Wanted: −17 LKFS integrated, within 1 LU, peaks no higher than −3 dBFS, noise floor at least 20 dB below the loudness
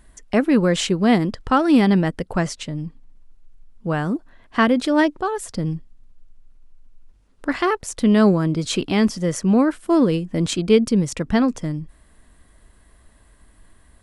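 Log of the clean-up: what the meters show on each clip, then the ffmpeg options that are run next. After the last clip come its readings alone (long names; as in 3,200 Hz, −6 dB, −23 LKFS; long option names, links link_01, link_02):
integrated loudness −20.0 LKFS; sample peak −3.5 dBFS; target loudness −17.0 LKFS
→ -af "volume=3dB,alimiter=limit=-3dB:level=0:latency=1"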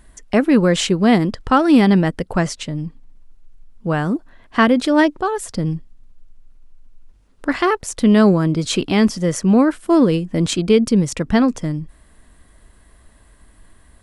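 integrated loudness −17.0 LKFS; sample peak −3.0 dBFS; background noise floor −51 dBFS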